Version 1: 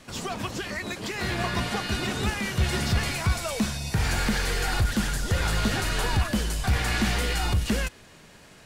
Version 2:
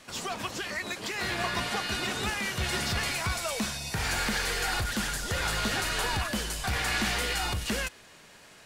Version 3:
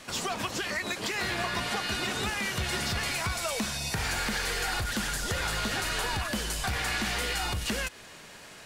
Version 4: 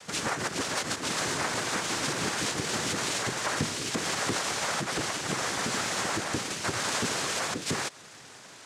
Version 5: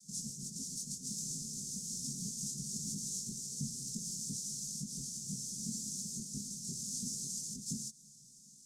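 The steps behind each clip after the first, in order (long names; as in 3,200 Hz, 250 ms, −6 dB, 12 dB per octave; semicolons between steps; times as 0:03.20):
low-shelf EQ 340 Hz −10 dB
downward compressor 3 to 1, threshold −34 dBFS, peak gain reduction 7.5 dB; level +5 dB
in parallel at −11 dB: comparator with hysteresis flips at −33 dBFS; on the sum: cochlear-implant simulation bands 3
multi-voice chorus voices 6, 0.62 Hz, delay 21 ms, depth 2.1 ms; Chebyshev band-stop filter 220–5,800 Hz, order 3; phaser with its sweep stopped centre 460 Hz, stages 8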